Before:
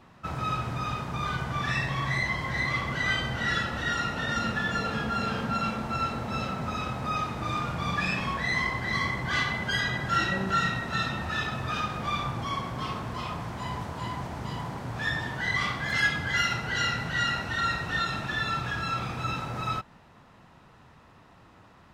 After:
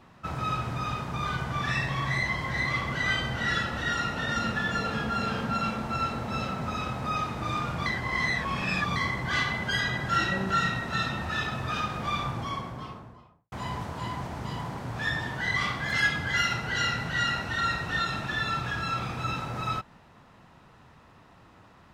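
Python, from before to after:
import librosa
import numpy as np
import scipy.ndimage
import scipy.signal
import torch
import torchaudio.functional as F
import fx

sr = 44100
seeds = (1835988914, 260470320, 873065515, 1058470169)

y = fx.studio_fade_out(x, sr, start_s=12.23, length_s=1.29)
y = fx.edit(y, sr, fx.reverse_span(start_s=7.86, length_s=1.1), tone=tone)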